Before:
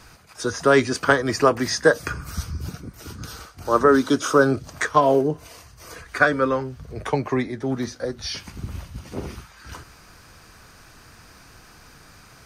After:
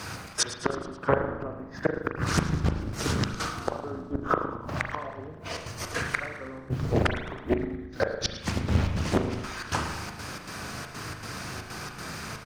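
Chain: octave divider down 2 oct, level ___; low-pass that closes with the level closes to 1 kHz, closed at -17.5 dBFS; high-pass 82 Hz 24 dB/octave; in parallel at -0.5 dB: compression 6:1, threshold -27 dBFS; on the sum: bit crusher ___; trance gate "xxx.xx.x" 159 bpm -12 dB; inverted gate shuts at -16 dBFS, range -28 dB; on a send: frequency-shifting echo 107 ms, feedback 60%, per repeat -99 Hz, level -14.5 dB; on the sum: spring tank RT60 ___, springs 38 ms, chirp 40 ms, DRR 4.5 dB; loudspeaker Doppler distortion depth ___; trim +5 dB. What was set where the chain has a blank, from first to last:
+1 dB, 10-bit, 1 s, 0.97 ms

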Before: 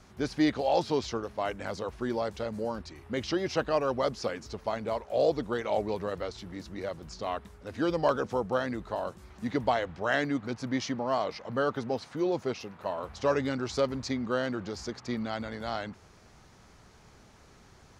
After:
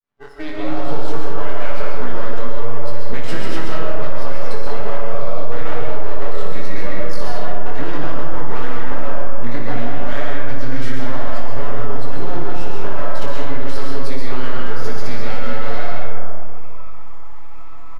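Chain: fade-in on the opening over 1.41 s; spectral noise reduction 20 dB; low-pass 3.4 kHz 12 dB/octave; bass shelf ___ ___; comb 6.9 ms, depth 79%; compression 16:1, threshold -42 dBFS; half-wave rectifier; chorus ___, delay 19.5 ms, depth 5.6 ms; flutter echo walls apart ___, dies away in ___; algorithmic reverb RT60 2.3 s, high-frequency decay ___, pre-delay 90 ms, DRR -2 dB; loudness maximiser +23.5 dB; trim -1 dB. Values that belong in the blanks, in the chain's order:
250 Hz, -8 dB, 1 Hz, 10 m, 0.45 s, 0.3×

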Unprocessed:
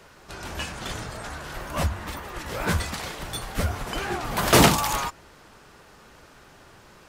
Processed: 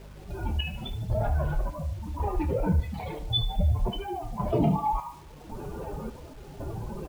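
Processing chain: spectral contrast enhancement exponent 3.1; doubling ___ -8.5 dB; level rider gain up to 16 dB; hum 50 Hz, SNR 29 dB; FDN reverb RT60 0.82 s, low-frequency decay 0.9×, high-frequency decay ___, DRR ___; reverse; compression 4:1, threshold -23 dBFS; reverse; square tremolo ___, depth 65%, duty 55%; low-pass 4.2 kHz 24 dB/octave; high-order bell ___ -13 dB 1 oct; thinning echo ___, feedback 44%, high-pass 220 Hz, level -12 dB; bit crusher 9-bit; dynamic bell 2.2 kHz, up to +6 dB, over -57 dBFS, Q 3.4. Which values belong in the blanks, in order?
27 ms, 0.55×, 18.5 dB, 0.91 Hz, 1.5 kHz, 74 ms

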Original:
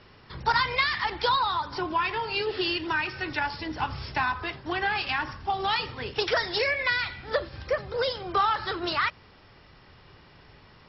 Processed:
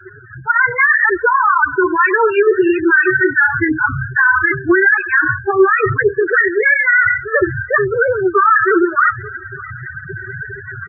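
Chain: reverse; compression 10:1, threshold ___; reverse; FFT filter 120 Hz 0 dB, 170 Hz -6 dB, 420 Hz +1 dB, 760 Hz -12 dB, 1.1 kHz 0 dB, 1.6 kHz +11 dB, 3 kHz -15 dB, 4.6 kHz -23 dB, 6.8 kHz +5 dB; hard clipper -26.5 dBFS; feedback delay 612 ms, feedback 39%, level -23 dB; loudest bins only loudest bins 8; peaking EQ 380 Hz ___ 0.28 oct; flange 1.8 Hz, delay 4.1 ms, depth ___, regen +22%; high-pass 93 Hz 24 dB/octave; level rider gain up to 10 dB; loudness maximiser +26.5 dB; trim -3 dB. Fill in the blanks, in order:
-39 dBFS, +8.5 dB, 4.9 ms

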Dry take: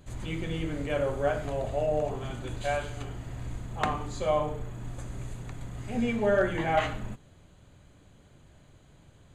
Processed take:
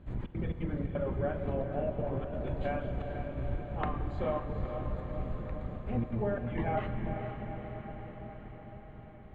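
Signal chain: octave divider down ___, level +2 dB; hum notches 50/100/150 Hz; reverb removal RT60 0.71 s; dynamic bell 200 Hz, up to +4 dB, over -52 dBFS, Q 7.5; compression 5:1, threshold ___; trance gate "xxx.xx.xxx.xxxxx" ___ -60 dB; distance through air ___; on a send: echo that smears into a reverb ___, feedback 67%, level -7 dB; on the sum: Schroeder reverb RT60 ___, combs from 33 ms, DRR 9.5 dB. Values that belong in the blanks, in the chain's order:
1 oct, -28 dBFS, 174 bpm, 500 m, 471 ms, 3.9 s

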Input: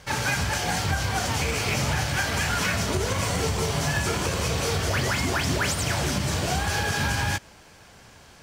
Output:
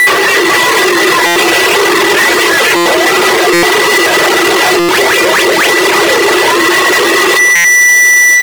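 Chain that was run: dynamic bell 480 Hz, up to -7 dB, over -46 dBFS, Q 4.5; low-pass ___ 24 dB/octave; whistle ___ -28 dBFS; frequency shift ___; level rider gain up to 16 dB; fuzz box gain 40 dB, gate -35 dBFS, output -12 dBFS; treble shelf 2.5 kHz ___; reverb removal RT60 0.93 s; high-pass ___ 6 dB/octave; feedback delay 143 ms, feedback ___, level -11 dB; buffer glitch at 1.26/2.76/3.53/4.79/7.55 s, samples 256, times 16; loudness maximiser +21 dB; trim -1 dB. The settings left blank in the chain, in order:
4 kHz, 1.7 kHz, +270 Hz, -5 dB, 300 Hz, 46%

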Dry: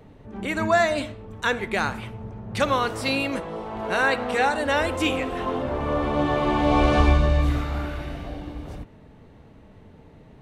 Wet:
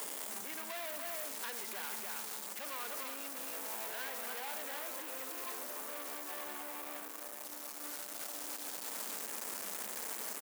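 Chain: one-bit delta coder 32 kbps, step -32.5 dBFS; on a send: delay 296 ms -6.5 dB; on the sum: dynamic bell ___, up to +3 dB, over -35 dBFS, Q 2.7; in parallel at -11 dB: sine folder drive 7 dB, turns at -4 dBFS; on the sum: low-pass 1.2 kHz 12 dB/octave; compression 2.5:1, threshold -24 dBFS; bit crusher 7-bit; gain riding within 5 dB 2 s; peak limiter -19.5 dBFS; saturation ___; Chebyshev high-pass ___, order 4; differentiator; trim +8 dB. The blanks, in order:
280 Hz, -30.5 dBFS, 200 Hz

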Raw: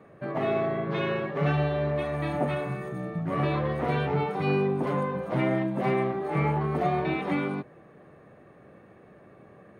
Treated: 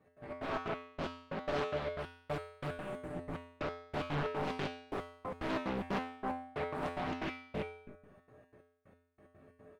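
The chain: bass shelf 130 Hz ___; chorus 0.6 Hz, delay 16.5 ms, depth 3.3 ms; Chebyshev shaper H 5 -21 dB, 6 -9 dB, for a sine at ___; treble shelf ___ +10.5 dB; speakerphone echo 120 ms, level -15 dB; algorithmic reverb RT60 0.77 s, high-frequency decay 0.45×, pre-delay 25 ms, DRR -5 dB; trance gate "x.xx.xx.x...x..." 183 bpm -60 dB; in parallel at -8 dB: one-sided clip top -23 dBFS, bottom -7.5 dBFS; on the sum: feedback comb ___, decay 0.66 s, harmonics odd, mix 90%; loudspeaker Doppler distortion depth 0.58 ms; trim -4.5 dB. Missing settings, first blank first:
+10.5 dB, -14 dBFS, 5.4 kHz, 86 Hz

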